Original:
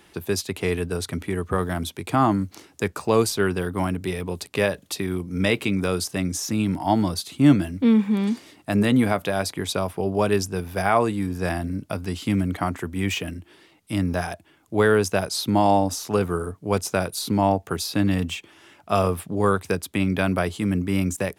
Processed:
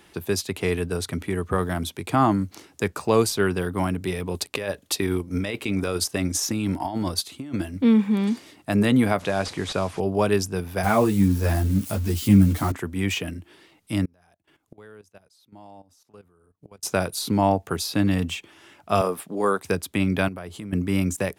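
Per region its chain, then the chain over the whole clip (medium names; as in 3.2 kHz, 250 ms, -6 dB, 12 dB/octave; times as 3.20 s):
4.34–7.76 s: peaking EQ 160 Hz -7 dB 0.68 oct + transient shaper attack +3 dB, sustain -6 dB + compressor with a negative ratio -26 dBFS
9.19–10.00 s: one-bit delta coder 64 kbps, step -35 dBFS + low-pass 8.4 kHz
10.83–12.72 s: zero-crossing glitches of -23.5 dBFS + bass shelf 260 Hz +12 dB + three-phase chorus
14.05–16.83 s: inverted gate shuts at -24 dBFS, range -25 dB + level held to a coarse grid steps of 15 dB
19.01–19.64 s: Bessel high-pass 260 Hz, order 4 + dynamic bell 2.8 kHz, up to -6 dB, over -42 dBFS, Q 1.4
20.28–20.73 s: peaking EQ 4.5 kHz -3.5 dB 2.7 oct + compression, threshold -32 dBFS
whole clip: none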